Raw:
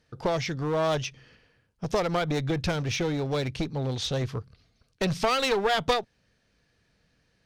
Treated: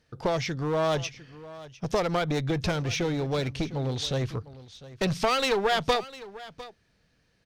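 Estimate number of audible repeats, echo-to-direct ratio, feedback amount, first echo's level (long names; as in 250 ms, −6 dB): 1, −17.5 dB, repeats not evenly spaced, −17.5 dB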